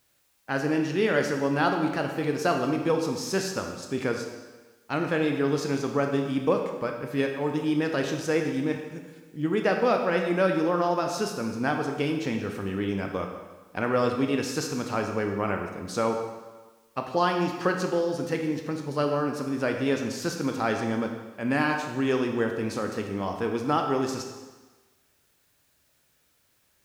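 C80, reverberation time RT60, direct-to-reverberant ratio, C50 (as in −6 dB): 7.0 dB, 1.2 s, 3.0 dB, 5.0 dB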